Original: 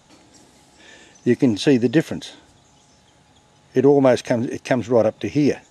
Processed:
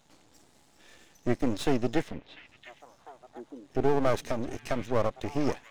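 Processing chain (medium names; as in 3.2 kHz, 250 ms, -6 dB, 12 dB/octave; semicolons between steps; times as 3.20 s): 2.02–3.81 s: low-pass that closes with the level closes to 560 Hz, closed at -27.5 dBFS; half-wave rectifier; repeats whose band climbs or falls 698 ms, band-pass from 2.5 kHz, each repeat -1.4 oct, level -8.5 dB; trim -6 dB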